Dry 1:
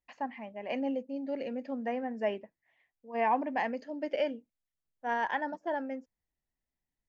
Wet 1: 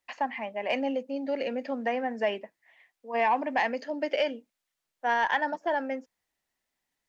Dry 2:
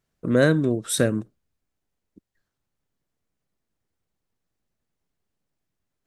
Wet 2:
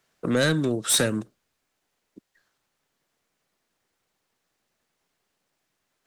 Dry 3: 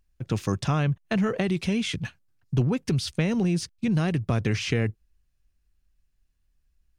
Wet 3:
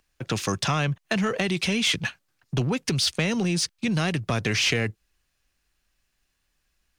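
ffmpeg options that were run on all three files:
-filter_complex "[0:a]acrossover=split=200|3000[s0][s1][s2];[s1]acompressor=threshold=0.0158:ratio=2[s3];[s0][s3][s2]amix=inputs=3:normalize=0,asplit=2[s4][s5];[s5]highpass=f=720:p=1,volume=11.2,asoftclip=type=tanh:threshold=0.501[s6];[s4][s6]amix=inputs=2:normalize=0,lowpass=f=7500:p=1,volume=0.501,volume=0.708"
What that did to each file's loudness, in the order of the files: +4.5 LU, -1.5 LU, +1.5 LU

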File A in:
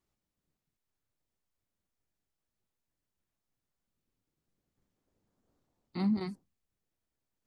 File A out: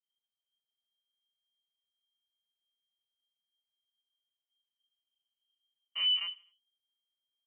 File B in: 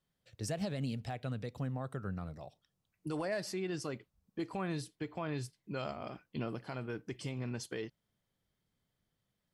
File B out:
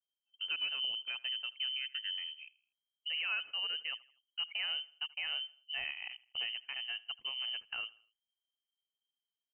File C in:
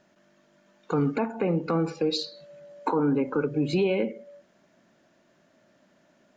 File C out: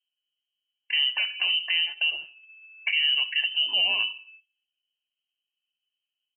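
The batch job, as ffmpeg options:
-af "anlmdn=0.1,adynamicequalizer=threshold=0.00224:dfrequency=2200:dqfactor=3.3:tfrequency=2200:tqfactor=3.3:attack=5:release=100:ratio=0.375:range=1.5:mode=cutabove:tftype=bell,lowpass=f=2700:t=q:w=0.5098,lowpass=f=2700:t=q:w=0.6013,lowpass=f=2700:t=q:w=0.9,lowpass=f=2700:t=q:w=2.563,afreqshift=-3200,aecho=1:1:81|162|243:0.0794|0.0342|0.0147"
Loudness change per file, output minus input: +4.0 LU, +3.5 LU, +4.0 LU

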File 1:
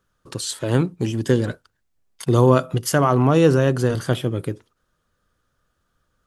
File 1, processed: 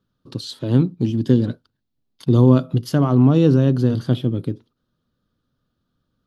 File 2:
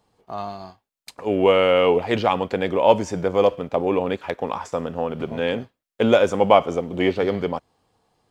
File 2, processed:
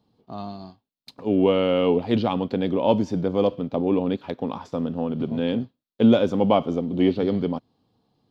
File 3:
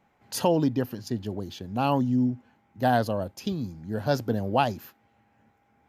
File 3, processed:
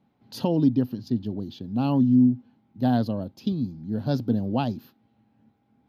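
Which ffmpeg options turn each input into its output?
-af "equalizer=f=125:t=o:w=1:g=8,equalizer=f=250:t=o:w=1:g=12,equalizer=f=2000:t=o:w=1:g=-6,equalizer=f=4000:t=o:w=1:g=10,equalizer=f=8000:t=o:w=1:g=-12,volume=0.447"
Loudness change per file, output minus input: +2.0 LU, -2.0 LU, +2.5 LU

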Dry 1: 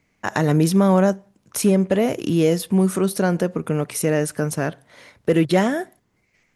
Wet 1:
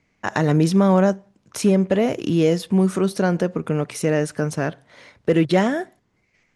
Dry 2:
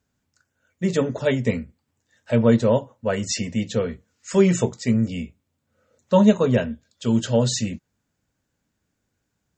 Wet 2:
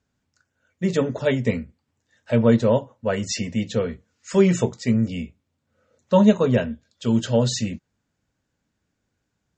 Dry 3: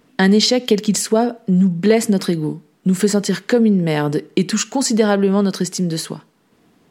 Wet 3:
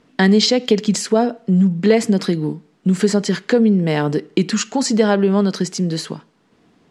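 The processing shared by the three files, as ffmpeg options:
-af "lowpass=7000"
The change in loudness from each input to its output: 0.0 LU, 0.0 LU, 0.0 LU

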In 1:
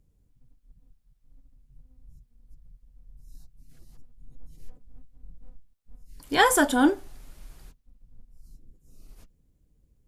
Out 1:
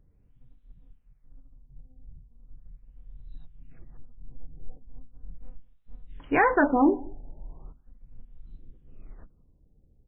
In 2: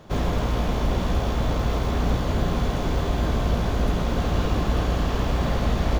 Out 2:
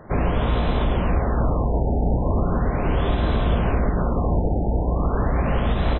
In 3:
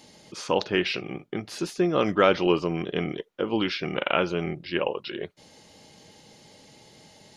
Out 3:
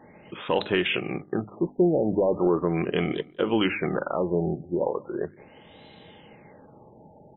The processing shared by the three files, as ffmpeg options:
-filter_complex "[0:a]acontrast=66,bandreject=f=50:t=h:w=6,bandreject=f=100:t=h:w=6,bandreject=f=150:t=h:w=6,bandreject=f=200:t=h:w=6,bandreject=f=250:t=h:w=6,bandreject=f=300:t=h:w=6,alimiter=limit=0.335:level=0:latency=1:release=150,asplit=2[s0][s1];[s1]adelay=186.6,volume=0.0631,highshelf=f=4000:g=-4.2[s2];[s0][s2]amix=inputs=2:normalize=0,afftfilt=real='re*lt(b*sr/1024,900*pow(4100/900,0.5+0.5*sin(2*PI*0.38*pts/sr)))':imag='im*lt(b*sr/1024,900*pow(4100/900,0.5+0.5*sin(2*PI*0.38*pts/sr)))':win_size=1024:overlap=0.75,volume=0.794"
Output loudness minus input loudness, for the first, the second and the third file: -1.0 LU, +2.0 LU, +0.5 LU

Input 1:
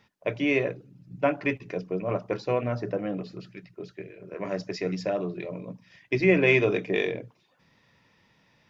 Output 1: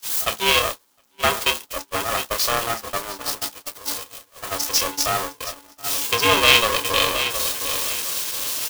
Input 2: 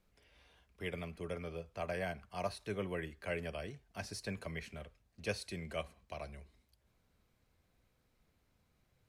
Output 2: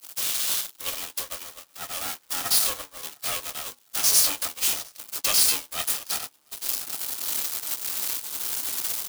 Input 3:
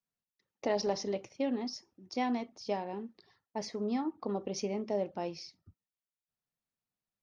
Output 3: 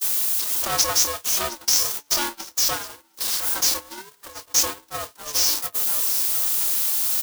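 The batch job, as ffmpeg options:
-filter_complex "[0:a]aeval=exprs='val(0)+0.5*0.0211*sgn(val(0))':c=same,asuperstop=centerf=1800:order=4:qfactor=2.5,crystalizer=i=8.5:c=0,highpass=210,asplit=2[s0][s1];[s1]adelay=27,volume=0.355[s2];[s0][s2]amix=inputs=2:normalize=0,asplit=2[s3][s4];[s4]adelay=712,lowpass=f=4900:p=1,volume=0.355,asplit=2[s5][s6];[s6]adelay=712,lowpass=f=4900:p=1,volume=0.38,asplit=2[s7][s8];[s8]adelay=712,lowpass=f=4900:p=1,volume=0.38,asplit=2[s9][s10];[s10]adelay=712,lowpass=f=4900:p=1,volume=0.38[s11];[s3][s5][s7][s9][s11]amix=inputs=5:normalize=0,afreqshift=390,agate=range=0.0316:threshold=0.0631:ratio=16:detection=peak,aeval=exprs='val(0)*sgn(sin(2*PI*290*n/s))':c=same"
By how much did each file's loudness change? +7.0 LU, +18.0 LU, +16.0 LU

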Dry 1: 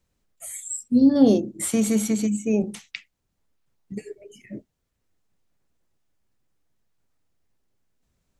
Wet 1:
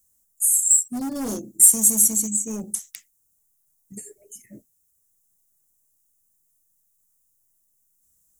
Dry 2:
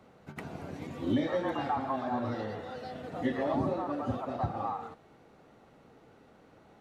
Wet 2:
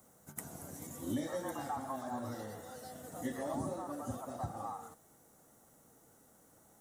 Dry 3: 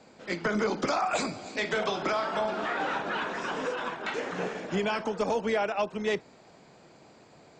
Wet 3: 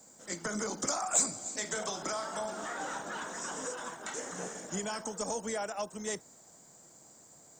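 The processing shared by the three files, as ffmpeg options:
-af "equalizer=f=400:t=o:w=0.33:g=-4,equalizer=f=2500:t=o:w=0.33:g=-9,equalizer=f=4000:t=o:w=0.33:g=5,volume=7.94,asoftclip=hard,volume=0.126,aexciter=amount=11.7:drive=8.8:freq=6400,volume=0.422"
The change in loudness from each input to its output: +4.0 LU, -7.5 LU, -5.0 LU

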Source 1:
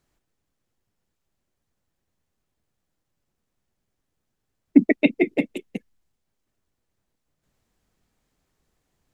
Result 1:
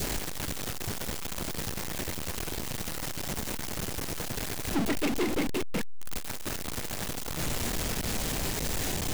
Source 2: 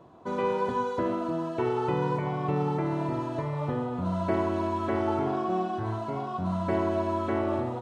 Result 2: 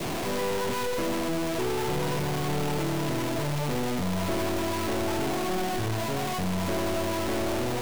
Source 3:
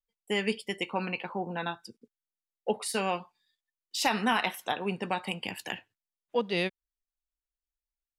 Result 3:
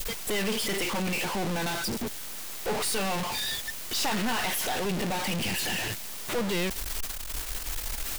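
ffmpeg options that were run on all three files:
-af "aeval=exprs='val(0)+0.5*0.141*sgn(val(0))':c=same,adynamicequalizer=threshold=0.0141:dfrequency=1200:dqfactor=1.6:tfrequency=1200:tqfactor=1.6:attack=5:release=100:ratio=0.375:range=3:mode=cutabove:tftype=bell,aeval=exprs='(tanh(11.2*val(0)+0.65)-tanh(0.65))/11.2':c=same,volume=0.668"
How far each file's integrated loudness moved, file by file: -11.5 LU, +0.5 LU, +2.5 LU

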